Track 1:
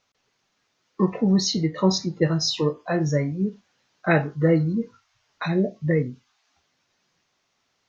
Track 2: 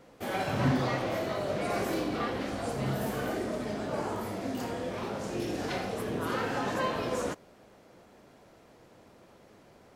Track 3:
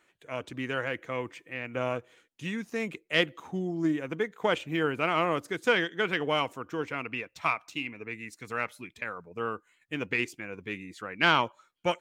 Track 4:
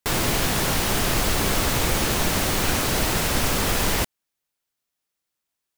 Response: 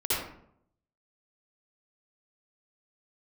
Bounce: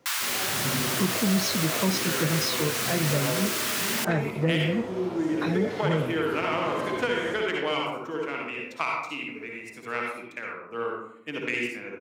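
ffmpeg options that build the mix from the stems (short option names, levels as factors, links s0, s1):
-filter_complex "[0:a]asoftclip=type=tanh:threshold=0.266,volume=0.794[s0];[1:a]volume=0.376,asplit=2[s1][s2];[s2]volume=0.473[s3];[2:a]aeval=exprs='0.376*(cos(1*acos(clip(val(0)/0.376,-1,1)))-cos(1*PI/2))+0.0188*(cos(7*acos(clip(val(0)/0.376,-1,1)))-cos(7*PI/2))':c=same,highpass=170,adelay=1350,volume=0.841,asplit=2[s4][s5];[s5]volume=0.501[s6];[3:a]highpass=f=1100:w=0.5412,highpass=f=1100:w=1.3066,volume=0.841[s7];[4:a]atrim=start_sample=2205[s8];[s3][s6]amix=inputs=2:normalize=0[s9];[s9][s8]afir=irnorm=-1:irlink=0[s10];[s0][s1][s4][s7][s10]amix=inputs=5:normalize=0,highpass=79,acrossover=split=190[s11][s12];[s12]acompressor=threshold=0.0708:ratio=6[s13];[s11][s13]amix=inputs=2:normalize=0"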